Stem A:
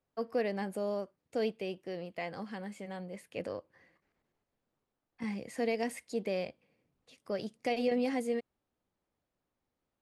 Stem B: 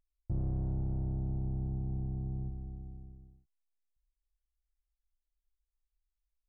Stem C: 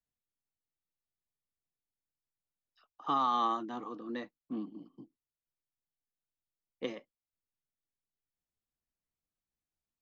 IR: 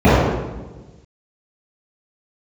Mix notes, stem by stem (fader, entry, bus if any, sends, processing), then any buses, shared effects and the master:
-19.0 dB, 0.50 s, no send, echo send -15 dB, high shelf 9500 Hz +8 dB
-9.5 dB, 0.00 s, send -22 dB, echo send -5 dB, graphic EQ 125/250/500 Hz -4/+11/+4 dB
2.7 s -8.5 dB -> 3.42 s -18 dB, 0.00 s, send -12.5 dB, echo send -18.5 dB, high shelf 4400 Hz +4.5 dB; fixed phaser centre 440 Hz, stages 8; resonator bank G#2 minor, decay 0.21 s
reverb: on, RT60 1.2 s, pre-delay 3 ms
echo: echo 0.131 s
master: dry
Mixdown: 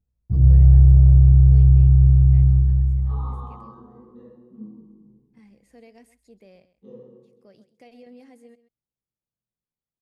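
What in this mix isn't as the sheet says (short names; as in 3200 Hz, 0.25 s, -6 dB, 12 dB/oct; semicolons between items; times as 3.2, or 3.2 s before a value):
stem A: entry 0.50 s -> 0.15 s; stem B: missing graphic EQ 125/250/500 Hz -4/+11/+4 dB; master: extra low shelf 240 Hz +8 dB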